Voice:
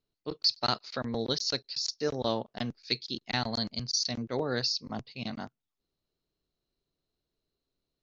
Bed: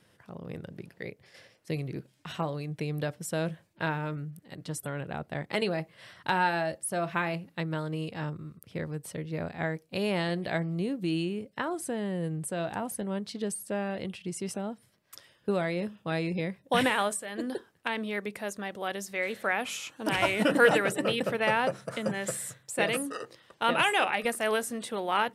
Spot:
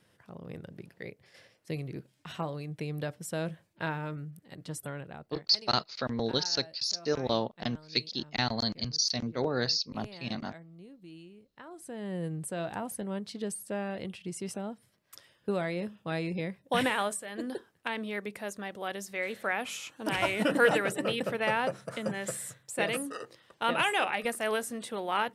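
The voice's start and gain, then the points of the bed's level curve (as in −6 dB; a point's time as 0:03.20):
5.05 s, +1.0 dB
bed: 0:04.90 −3 dB
0:05.60 −19.5 dB
0:11.51 −19.5 dB
0:12.15 −2.5 dB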